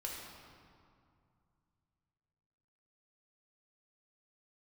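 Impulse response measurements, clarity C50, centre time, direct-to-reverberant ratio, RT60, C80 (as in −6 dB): 0.5 dB, 99 ms, −3.0 dB, 2.3 s, 2.0 dB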